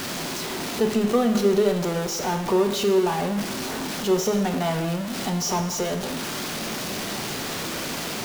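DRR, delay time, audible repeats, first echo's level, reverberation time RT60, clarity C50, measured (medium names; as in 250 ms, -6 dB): 5.5 dB, no echo, no echo, no echo, 0.90 s, 9.0 dB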